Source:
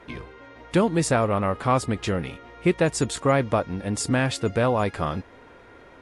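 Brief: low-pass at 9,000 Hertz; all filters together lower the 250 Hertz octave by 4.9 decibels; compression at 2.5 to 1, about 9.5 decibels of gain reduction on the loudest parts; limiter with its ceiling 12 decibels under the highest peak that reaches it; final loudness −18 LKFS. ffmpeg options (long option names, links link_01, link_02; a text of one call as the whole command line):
ffmpeg -i in.wav -af "lowpass=9000,equalizer=frequency=250:width_type=o:gain=-7,acompressor=threshold=-32dB:ratio=2.5,volume=23.5dB,alimiter=limit=-7.5dB:level=0:latency=1" out.wav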